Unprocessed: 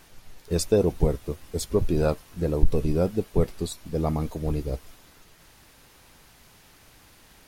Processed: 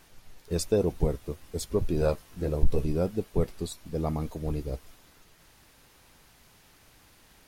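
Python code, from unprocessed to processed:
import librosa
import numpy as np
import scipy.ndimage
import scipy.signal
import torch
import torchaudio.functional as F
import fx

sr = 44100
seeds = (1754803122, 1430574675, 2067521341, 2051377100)

y = fx.doubler(x, sr, ms=15.0, db=-6.0, at=(2.0, 2.85))
y = y * librosa.db_to_amplitude(-4.0)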